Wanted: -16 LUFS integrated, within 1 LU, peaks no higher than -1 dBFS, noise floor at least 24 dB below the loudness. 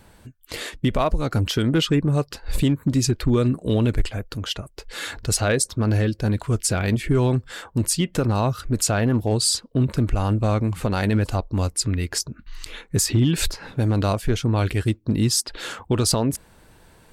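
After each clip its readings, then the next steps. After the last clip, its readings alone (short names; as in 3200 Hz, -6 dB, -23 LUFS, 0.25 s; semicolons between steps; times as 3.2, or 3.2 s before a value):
clipped 0.4%; flat tops at -11.5 dBFS; loudness -22.5 LUFS; peak -11.5 dBFS; loudness target -16.0 LUFS
-> clip repair -11.5 dBFS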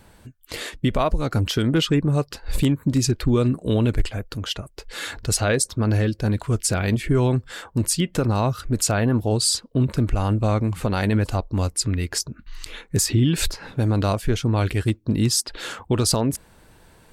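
clipped 0.0%; loudness -22.5 LUFS; peak -5.5 dBFS; loudness target -16.0 LUFS
-> gain +6.5 dB; limiter -1 dBFS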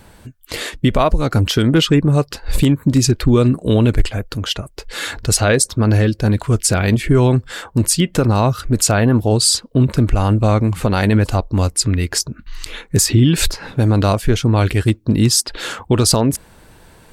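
loudness -16.0 LUFS; peak -1.0 dBFS; noise floor -47 dBFS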